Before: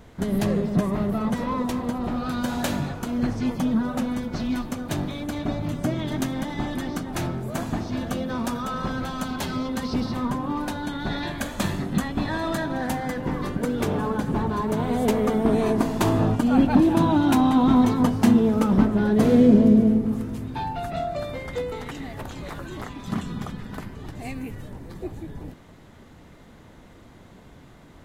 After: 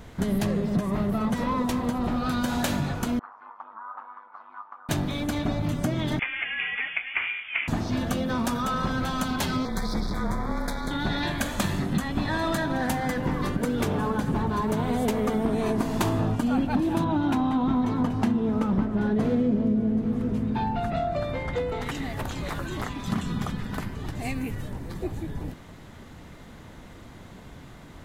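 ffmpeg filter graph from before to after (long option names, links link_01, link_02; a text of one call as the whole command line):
ffmpeg -i in.wav -filter_complex "[0:a]asettb=1/sr,asplit=3[link_01][link_02][link_03];[link_01]atrim=end=3.194[link_04];[link_02]atrim=start=3.19:end=4.89,asetpts=PTS-STARTPTS,afade=type=in:duration=0.004:curve=qsin,afade=type=out:start_time=1.696:duration=0.004:curve=qsin,tremolo=f=100:d=0.71,asuperpass=centerf=1100:order=4:qfactor=2.5[link_05];[link_03]atrim=start=4.886[link_06];[link_04][link_05]acrossfade=duration=0.004:curve1=hsin:curve2=qsin[link_07];[link_07][link_06]acrossfade=duration=0.004:curve1=qsin:curve2=hsin,asettb=1/sr,asplit=3[link_08][link_09][link_10];[link_08]atrim=end=6.194[link_11];[link_09]atrim=start=6.19:end=7.68,asetpts=PTS-STARTPTS,afade=type=in:duration=0.004:curve=qsin,afade=type=out:start_time=1.486:duration=0.004:curve=qsin,highpass=frequency=1400:width_type=q:width=3.7,lowpass=frequency=3100:width_type=q:width=0.5098,lowpass=frequency=3100:width_type=q:width=0.6013,lowpass=frequency=3100:width_type=q:width=0.9,lowpass=frequency=3100:width_type=q:width=2.563,afreqshift=-3700[link_12];[link_10]atrim=start=7.676[link_13];[link_11][link_12]acrossfade=duration=0.004:curve1=hsin:curve2=qsin[link_14];[link_14][link_13]acrossfade=duration=0.004:curve1=qsin:curve2=hsin,asettb=1/sr,asplit=3[link_15][link_16][link_17];[link_15]atrim=end=9.654[link_18];[link_16]atrim=start=9.65:end=10.91,asetpts=PTS-STARTPTS,afade=type=in:duration=0.004:curve=qsin,afade=type=out:start_time=1.256:duration=0.004:curve=qsin,aeval=exprs='max(val(0),0)':channel_layout=same,afreqshift=-33,asuperstop=centerf=2800:order=8:qfactor=2.6[link_19];[link_17]atrim=start=10.906[link_20];[link_18][link_19]acrossfade=duration=0.004:curve1=hsin:curve2=qsin[link_21];[link_21][link_20]acrossfade=duration=0.004:curve1=qsin:curve2=hsin,asettb=1/sr,asplit=3[link_22][link_23][link_24];[link_22]atrim=end=17.044[link_25];[link_23]atrim=start=17.04:end=21.82,asetpts=PTS-STARTPTS,afade=type=in:duration=0.004:curve=qsin,afade=type=out:start_time=4.776:duration=0.004:curve=qsin,lowpass=frequency=2500:poles=1,aecho=1:1:779:0.158,atrim=end_sample=210798[link_26];[link_24]atrim=start=21.816[link_27];[link_25][link_26]acrossfade=duration=0.004:curve1=hsin:curve2=qsin[link_28];[link_28][link_27]acrossfade=duration=0.004:curve1=qsin:curve2=hsin,equalizer=frequency=420:width=0.63:gain=-3,acompressor=threshold=-27dB:ratio=4,volume=4.5dB" out.wav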